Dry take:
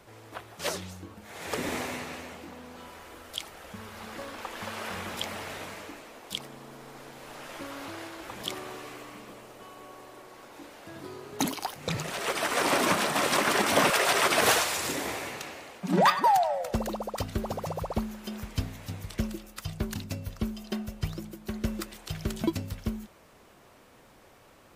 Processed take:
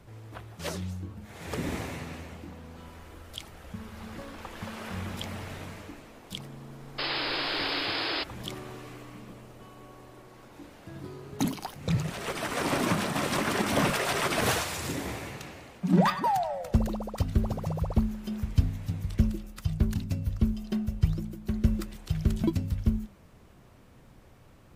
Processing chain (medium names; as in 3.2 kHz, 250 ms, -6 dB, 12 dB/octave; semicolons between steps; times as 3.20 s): in parallel at -10 dB: overload inside the chain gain 17.5 dB; on the sum: painted sound noise, 6.98–8.24 s, 270–5200 Hz -24 dBFS; tone controls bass +15 dB, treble -1 dB; hum notches 50/100/150/200/250 Hz; trim -7 dB